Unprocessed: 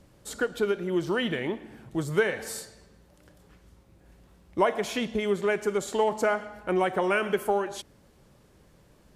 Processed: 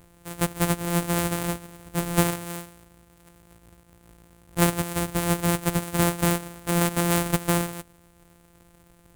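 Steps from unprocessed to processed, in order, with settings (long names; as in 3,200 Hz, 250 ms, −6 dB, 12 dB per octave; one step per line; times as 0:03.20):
samples sorted by size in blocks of 256 samples
high shelf with overshoot 6,800 Hz +7 dB, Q 1.5
level +2 dB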